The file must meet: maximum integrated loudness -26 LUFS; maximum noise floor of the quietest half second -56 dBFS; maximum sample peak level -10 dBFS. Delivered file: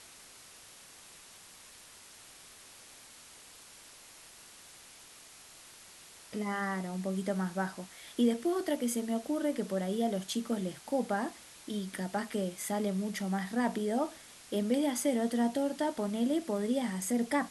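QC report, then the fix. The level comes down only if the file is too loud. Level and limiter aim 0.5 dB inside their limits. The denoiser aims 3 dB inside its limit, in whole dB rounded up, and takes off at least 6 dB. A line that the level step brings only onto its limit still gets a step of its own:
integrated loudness -33.0 LUFS: pass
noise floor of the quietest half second -54 dBFS: fail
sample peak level -17.5 dBFS: pass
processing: noise reduction 6 dB, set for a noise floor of -54 dBFS

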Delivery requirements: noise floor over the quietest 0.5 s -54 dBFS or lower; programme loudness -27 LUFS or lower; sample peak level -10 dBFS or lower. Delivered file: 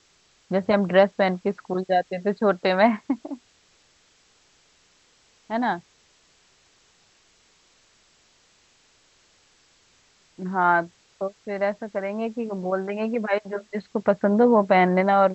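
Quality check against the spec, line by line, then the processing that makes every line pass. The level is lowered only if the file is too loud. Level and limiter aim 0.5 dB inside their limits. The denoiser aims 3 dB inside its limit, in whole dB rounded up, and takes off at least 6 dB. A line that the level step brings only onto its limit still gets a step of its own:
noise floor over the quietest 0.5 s -61 dBFS: pass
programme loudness -23.0 LUFS: fail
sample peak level -5.5 dBFS: fail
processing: trim -4.5 dB; peak limiter -10.5 dBFS

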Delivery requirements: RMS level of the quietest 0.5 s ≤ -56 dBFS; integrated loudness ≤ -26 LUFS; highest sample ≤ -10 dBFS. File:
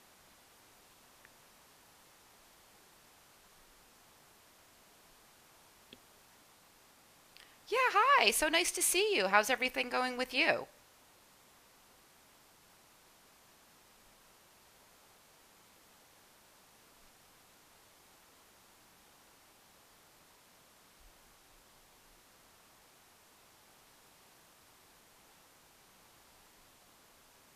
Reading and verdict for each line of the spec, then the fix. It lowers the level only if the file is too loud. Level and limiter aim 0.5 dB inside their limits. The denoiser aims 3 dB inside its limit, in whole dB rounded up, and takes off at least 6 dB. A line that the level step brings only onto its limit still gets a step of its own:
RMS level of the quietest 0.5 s -63 dBFS: pass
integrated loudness -29.5 LUFS: pass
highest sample -11.0 dBFS: pass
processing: none needed

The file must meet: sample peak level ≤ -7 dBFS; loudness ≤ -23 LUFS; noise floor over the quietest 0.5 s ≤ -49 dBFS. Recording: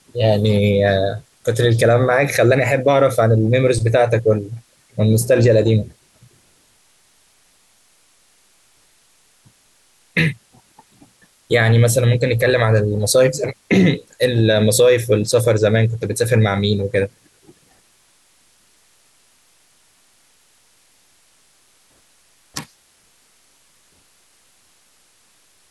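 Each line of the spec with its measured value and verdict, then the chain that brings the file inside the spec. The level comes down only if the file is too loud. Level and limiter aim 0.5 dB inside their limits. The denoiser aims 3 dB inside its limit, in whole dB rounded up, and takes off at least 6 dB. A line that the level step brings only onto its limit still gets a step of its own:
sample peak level -4.5 dBFS: fail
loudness -16.0 LUFS: fail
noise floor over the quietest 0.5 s -56 dBFS: pass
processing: trim -7.5 dB

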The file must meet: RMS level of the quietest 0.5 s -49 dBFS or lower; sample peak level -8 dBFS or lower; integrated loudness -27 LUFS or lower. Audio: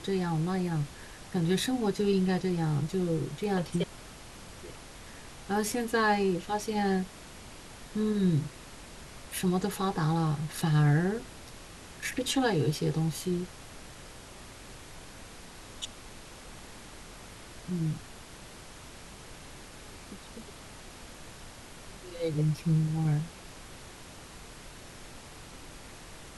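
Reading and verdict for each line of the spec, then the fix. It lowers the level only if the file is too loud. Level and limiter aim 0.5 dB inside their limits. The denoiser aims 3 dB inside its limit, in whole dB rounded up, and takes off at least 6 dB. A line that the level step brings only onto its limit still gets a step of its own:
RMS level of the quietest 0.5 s -47 dBFS: fail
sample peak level -14.5 dBFS: pass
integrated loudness -30.0 LUFS: pass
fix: noise reduction 6 dB, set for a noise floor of -47 dBFS

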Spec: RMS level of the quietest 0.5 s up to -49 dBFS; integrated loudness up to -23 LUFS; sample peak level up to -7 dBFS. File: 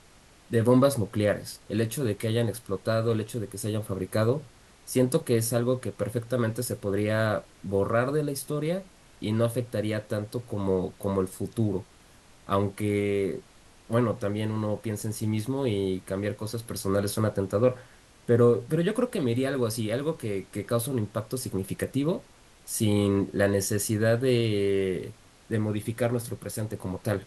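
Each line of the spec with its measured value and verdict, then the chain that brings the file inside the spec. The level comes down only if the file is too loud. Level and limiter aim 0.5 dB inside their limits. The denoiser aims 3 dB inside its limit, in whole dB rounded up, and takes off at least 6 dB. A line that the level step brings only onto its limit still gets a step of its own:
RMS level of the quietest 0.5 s -55 dBFS: pass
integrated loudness -28.0 LUFS: pass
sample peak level -9.0 dBFS: pass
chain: none needed

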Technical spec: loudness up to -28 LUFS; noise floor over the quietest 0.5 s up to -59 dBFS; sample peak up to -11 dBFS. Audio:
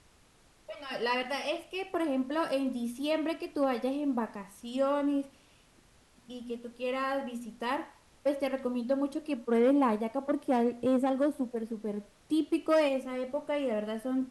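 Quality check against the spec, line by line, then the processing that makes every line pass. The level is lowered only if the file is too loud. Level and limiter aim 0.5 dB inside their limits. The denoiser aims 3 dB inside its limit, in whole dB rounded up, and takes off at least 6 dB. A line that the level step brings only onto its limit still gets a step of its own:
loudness -31.5 LUFS: pass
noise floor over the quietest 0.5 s -62 dBFS: pass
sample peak -15.5 dBFS: pass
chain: none needed

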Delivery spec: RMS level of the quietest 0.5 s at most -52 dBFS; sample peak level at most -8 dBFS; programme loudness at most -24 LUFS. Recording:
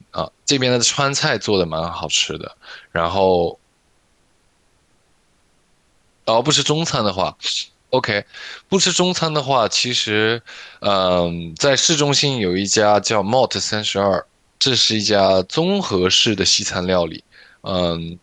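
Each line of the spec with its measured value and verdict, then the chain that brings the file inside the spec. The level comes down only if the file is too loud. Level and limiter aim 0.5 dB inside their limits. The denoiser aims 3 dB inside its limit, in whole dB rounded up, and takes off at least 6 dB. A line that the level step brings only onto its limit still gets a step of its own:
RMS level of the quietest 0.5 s -60 dBFS: pass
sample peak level -3.5 dBFS: fail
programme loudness -17.5 LUFS: fail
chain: trim -7 dB

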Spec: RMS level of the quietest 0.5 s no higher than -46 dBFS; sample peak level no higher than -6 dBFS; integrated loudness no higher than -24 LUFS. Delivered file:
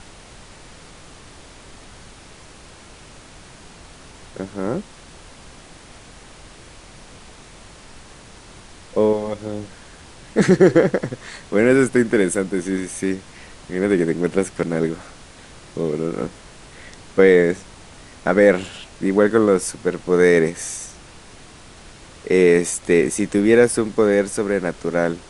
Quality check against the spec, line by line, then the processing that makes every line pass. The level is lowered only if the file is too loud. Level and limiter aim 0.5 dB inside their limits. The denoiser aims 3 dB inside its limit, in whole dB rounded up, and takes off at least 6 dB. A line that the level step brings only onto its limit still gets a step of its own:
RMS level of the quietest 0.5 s -43 dBFS: fail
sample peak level -1.5 dBFS: fail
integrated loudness -19.0 LUFS: fail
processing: trim -5.5 dB

